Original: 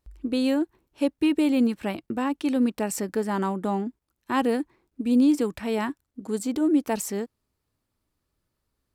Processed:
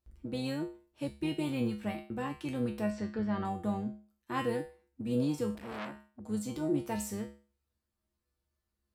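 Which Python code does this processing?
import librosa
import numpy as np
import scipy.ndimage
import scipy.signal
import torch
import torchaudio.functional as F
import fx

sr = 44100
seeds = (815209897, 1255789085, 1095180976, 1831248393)

y = fx.octave_divider(x, sr, octaves=1, level_db=-4.0)
y = fx.lowpass(y, sr, hz=4600.0, slope=24, at=(2.9, 3.45))
y = fx.comb_fb(y, sr, f0_hz=70.0, decay_s=0.38, harmonics='odd', damping=0.0, mix_pct=90)
y = fx.transformer_sat(y, sr, knee_hz=1800.0, at=(5.55, 6.2))
y = F.gain(torch.from_numpy(y), 2.5).numpy()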